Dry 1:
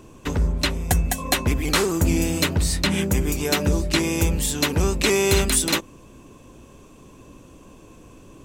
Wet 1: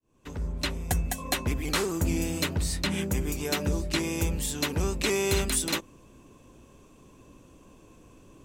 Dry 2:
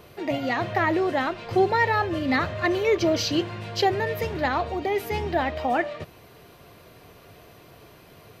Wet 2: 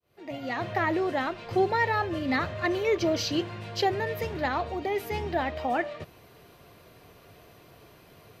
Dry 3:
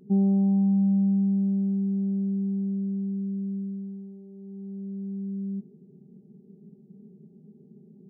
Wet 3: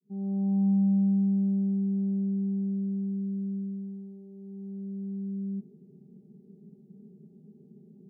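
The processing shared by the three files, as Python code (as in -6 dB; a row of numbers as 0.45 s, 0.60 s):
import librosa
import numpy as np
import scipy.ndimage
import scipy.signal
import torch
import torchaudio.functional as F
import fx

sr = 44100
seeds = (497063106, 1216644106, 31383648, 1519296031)

y = fx.fade_in_head(x, sr, length_s=0.69)
y = y * 10.0 ** (-30 / 20.0) / np.sqrt(np.mean(np.square(y)))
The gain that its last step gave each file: -7.0 dB, -4.0 dB, -1.5 dB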